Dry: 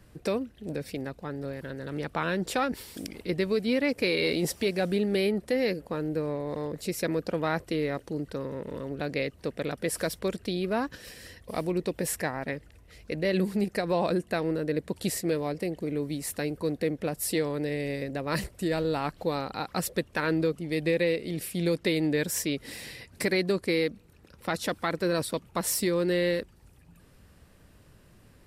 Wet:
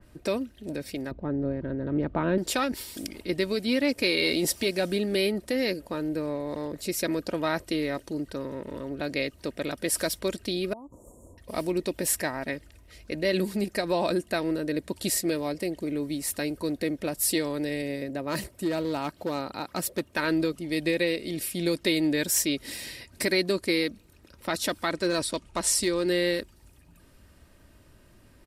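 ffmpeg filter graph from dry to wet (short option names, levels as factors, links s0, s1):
-filter_complex "[0:a]asettb=1/sr,asplit=3[s0][s1][s2];[s0]atrim=end=1.114[s3];[s1]atrim=start=1.11:end=2.38,asetpts=PTS-STARTPTS,afade=t=in:d=0.004:c=qsin,afade=t=out:st=1.266:d=0.004:c=qsin,lowpass=2700,tiltshelf=f=890:g=9[s4];[s2]atrim=start=2.376[s5];[s3][s4]acrossfade=d=0.004:c1=hsin:c2=qsin[s6];[s6][s5]acrossfade=d=0.004:c1=qsin:c2=hsin,asettb=1/sr,asplit=3[s7][s8][s9];[s7]atrim=end=10.734[s10];[s8]atrim=start=10.73:end=11.38,asetpts=PTS-STARTPTS,afade=t=in:d=0.004:c=qsin,afade=t=out:st=0.646:d=0.004:c=qsin,aemphasis=mode=reproduction:type=50fm,acompressor=threshold=0.01:ratio=16:attack=3.2:release=140:knee=1:detection=peak,asuperstop=centerf=2800:order=20:qfactor=0.5[s11];[s9]atrim=start=11.376[s12];[s10][s11]acrossfade=d=0.004:c1=hsin:c2=qsin[s13];[s13][s12]acrossfade=d=0.004:c1=qsin:c2=hsin,asettb=1/sr,asplit=3[s14][s15][s16];[s14]atrim=end=17.824[s17];[s15]atrim=start=17.82:end=20.16,asetpts=PTS-STARTPTS,afade=t=in:d=0.004:c=qsin,afade=t=out:st=2.336:d=0.004:c=qsin,equalizer=f=5300:w=0.34:g=-5.5,asoftclip=type=hard:threshold=0.075,highpass=82[s18];[s16]atrim=start=20.156[s19];[s17][s18]acrossfade=d=0.004:c1=hsin:c2=qsin[s20];[s20][s19]acrossfade=d=0.004:c1=qsin:c2=hsin,asettb=1/sr,asplit=3[s21][s22][s23];[s21]atrim=end=24.904[s24];[s22]atrim=start=24.9:end=26.06,asetpts=PTS-STARTPTS,afade=t=in:d=0.004:c=qsin,afade=t=out:st=1.156:d=0.004:c=qsin,lowpass=f=10000:w=0.5412,lowpass=f=10000:w=1.3066,asubboost=boost=10:cutoff=69,asoftclip=type=hard:threshold=0.106[s25];[s23]atrim=start=26.056[s26];[s24][s25]acrossfade=d=0.004:c1=hsin:c2=qsin[s27];[s27][s26]acrossfade=d=0.004:c1=qsin:c2=hsin,aecho=1:1:3.2:0.37,adynamicequalizer=threshold=0.00708:dfrequency=2800:dqfactor=0.7:tfrequency=2800:tqfactor=0.7:attack=5:release=100:ratio=0.375:range=3:mode=boostabove:tftype=highshelf"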